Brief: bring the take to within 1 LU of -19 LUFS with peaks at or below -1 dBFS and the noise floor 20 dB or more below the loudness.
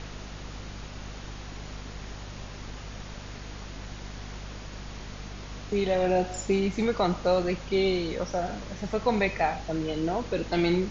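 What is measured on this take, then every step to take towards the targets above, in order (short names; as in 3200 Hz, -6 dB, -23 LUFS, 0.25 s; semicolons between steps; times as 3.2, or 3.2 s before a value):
hum 50 Hz; harmonics up to 250 Hz; hum level -39 dBFS; noise floor -41 dBFS; noise floor target -48 dBFS; loudness -27.5 LUFS; peak -12.0 dBFS; loudness target -19.0 LUFS
-> notches 50/100/150/200/250 Hz; denoiser 7 dB, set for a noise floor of -41 dBFS; gain +8.5 dB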